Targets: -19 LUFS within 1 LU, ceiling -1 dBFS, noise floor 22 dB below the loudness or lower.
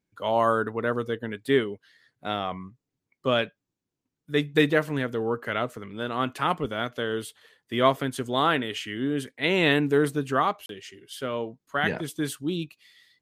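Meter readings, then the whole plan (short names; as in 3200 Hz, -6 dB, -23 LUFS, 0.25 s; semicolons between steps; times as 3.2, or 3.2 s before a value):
dropouts 1; longest dropout 32 ms; loudness -26.5 LUFS; peak -6.0 dBFS; loudness target -19.0 LUFS
-> interpolate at 10.66, 32 ms; gain +7.5 dB; limiter -1 dBFS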